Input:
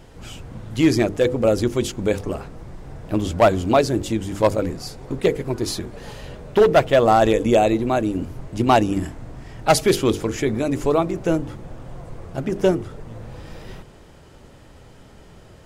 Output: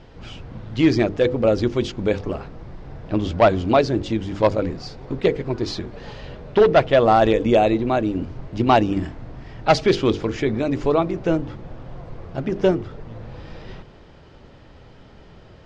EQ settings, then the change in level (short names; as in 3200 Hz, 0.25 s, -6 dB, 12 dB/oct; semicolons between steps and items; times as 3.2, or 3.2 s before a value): LPF 5100 Hz 24 dB/oct; 0.0 dB